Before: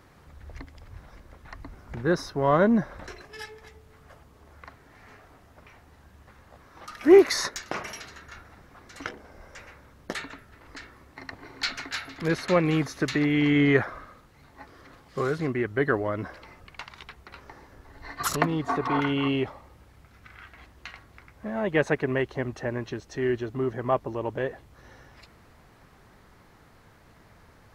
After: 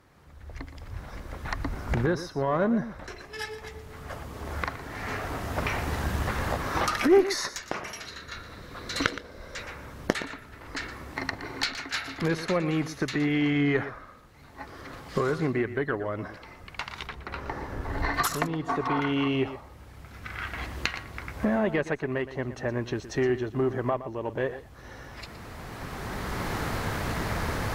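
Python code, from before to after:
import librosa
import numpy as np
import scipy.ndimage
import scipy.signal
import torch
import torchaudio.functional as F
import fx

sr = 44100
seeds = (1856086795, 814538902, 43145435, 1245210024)

p1 = fx.recorder_agc(x, sr, target_db=-12.0, rise_db_per_s=12.0, max_gain_db=30)
p2 = fx.high_shelf(p1, sr, hz=2700.0, db=-9.5, at=(17.07, 18.14))
p3 = fx.tube_stage(p2, sr, drive_db=3.0, bias=0.6)
p4 = fx.graphic_eq_31(p3, sr, hz=(500, 800, 4000), db=(4, -8, 11), at=(8.06, 9.63))
p5 = p4 + fx.echo_single(p4, sr, ms=118, db=-13.5, dry=0)
y = F.gain(torch.from_numpy(p5), -2.0).numpy()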